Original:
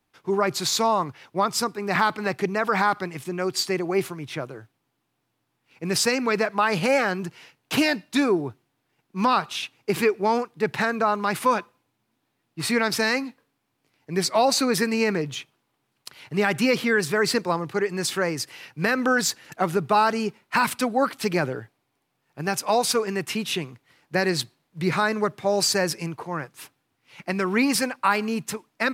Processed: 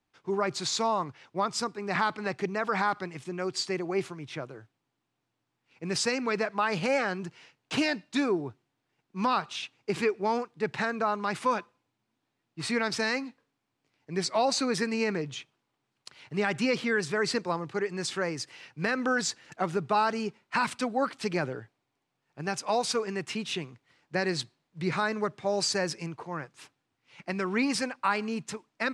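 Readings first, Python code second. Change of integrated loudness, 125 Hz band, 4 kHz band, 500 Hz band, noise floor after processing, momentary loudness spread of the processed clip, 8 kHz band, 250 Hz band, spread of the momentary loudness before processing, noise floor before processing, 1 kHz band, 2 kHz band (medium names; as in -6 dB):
-6.0 dB, -6.0 dB, -6.0 dB, -6.0 dB, -82 dBFS, 11 LU, -7.5 dB, -6.0 dB, 11 LU, -75 dBFS, -6.0 dB, -6.0 dB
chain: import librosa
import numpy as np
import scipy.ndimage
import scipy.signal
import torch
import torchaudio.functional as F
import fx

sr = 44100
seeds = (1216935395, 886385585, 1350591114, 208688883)

y = scipy.signal.sosfilt(scipy.signal.butter(4, 8400.0, 'lowpass', fs=sr, output='sos'), x)
y = y * librosa.db_to_amplitude(-6.0)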